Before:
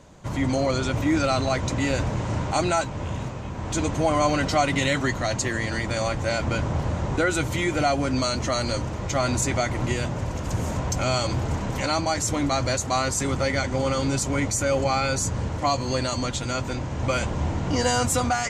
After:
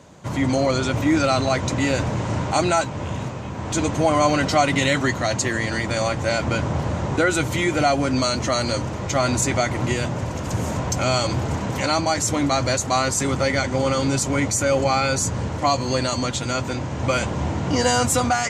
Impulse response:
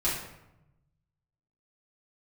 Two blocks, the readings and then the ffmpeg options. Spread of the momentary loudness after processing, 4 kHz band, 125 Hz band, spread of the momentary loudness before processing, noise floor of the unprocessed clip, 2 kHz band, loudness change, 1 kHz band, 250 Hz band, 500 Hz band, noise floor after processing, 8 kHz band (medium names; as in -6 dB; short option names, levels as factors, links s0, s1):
6 LU, +3.5 dB, +2.0 dB, 6 LU, -31 dBFS, +3.5 dB, +3.0 dB, +3.5 dB, +3.5 dB, +3.5 dB, -29 dBFS, +3.5 dB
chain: -af "highpass=86,volume=1.5"